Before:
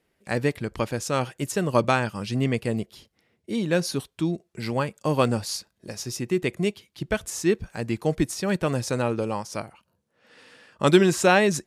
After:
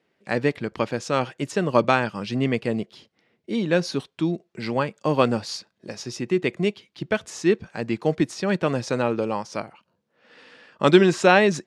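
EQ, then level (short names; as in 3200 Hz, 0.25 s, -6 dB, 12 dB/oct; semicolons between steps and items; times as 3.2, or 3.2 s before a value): BPF 150–4900 Hz; +2.5 dB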